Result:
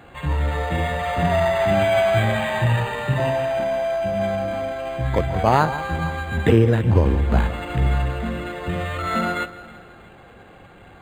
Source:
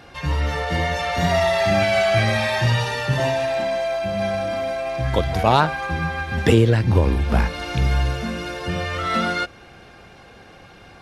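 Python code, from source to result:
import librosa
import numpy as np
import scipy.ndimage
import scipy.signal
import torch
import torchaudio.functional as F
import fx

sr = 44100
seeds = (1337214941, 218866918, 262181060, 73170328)

y = fx.echo_alternate(x, sr, ms=162, hz=1400.0, feedback_pct=59, wet_db=-13.0)
y = np.interp(np.arange(len(y)), np.arange(len(y))[::8], y[::8])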